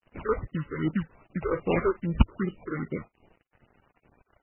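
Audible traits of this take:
aliases and images of a low sample rate 1,700 Hz, jitter 20%
phaser sweep stages 6, 2.5 Hz, lowest notch 180–1,700 Hz
a quantiser's noise floor 10 bits, dither none
MP3

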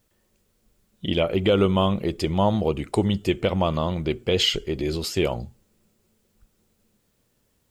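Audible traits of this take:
a quantiser's noise floor 12 bits, dither triangular

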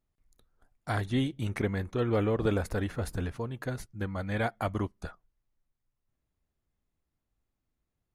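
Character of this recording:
background noise floor −84 dBFS
spectral slope −6.5 dB per octave

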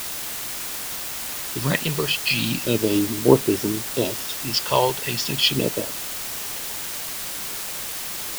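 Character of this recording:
phaser sweep stages 2, 0.36 Hz, lowest notch 270–4,100 Hz
a quantiser's noise floor 6 bits, dither triangular

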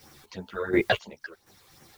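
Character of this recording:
phaser sweep stages 8, 2.9 Hz, lowest notch 210–4,200 Hz
a quantiser's noise floor 10 bits, dither triangular
sample-and-hold tremolo 4.1 Hz, depth 85%
a shimmering, thickened sound

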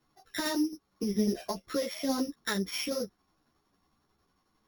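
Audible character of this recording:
a buzz of ramps at a fixed pitch in blocks of 8 samples
tremolo saw down 11 Hz, depth 45%
a shimmering, thickened sound

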